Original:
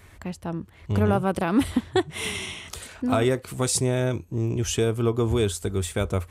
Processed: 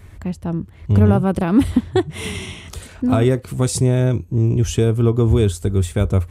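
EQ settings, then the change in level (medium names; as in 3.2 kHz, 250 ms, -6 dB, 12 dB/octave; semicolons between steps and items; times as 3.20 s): bass shelf 340 Hz +11.5 dB; 0.0 dB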